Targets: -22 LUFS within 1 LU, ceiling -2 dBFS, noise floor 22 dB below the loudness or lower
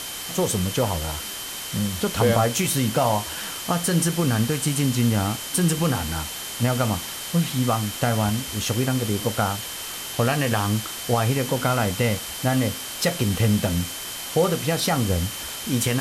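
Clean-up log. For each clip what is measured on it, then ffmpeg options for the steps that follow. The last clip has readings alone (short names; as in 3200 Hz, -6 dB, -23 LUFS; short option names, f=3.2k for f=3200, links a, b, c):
steady tone 3100 Hz; tone level -38 dBFS; noise floor -33 dBFS; noise floor target -46 dBFS; loudness -23.5 LUFS; peak -7.0 dBFS; loudness target -22.0 LUFS
-> -af "bandreject=f=3.1k:w=30"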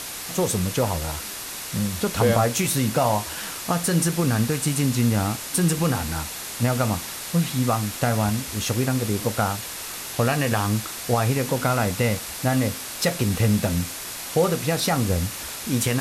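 steady tone none; noise floor -34 dBFS; noise floor target -46 dBFS
-> -af "afftdn=nr=12:nf=-34"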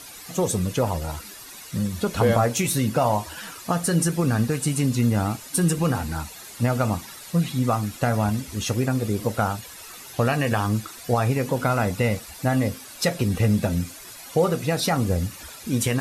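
noise floor -42 dBFS; noise floor target -46 dBFS
-> -af "afftdn=nr=6:nf=-42"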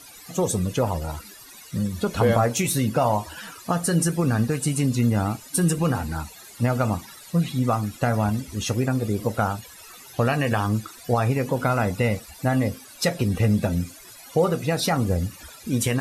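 noise floor -45 dBFS; noise floor target -46 dBFS
-> -af "afftdn=nr=6:nf=-45"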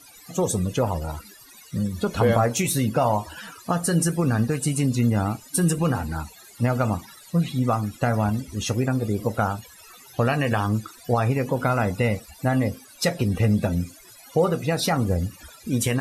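noise floor -49 dBFS; loudness -24.0 LUFS; peak -7.0 dBFS; loudness target -22.0 LUFS
-> -af "volume=2dB"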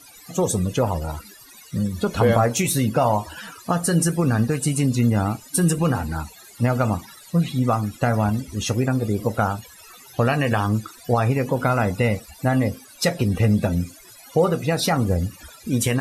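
loudness -22.0 LUFS; peak -5.0 dBFS; noise floor -47 dBFS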